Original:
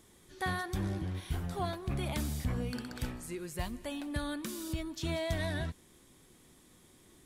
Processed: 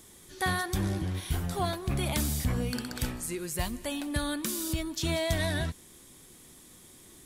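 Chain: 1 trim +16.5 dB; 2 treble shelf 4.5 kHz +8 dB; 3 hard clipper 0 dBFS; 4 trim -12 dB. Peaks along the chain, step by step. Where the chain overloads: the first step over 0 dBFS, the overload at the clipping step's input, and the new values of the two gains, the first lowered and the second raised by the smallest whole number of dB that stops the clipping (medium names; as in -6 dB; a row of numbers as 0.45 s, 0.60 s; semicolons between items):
-5.5 dBFS, -3.5 dBFS, -3.5 dBFS, -15.5 dBFS; nothing clips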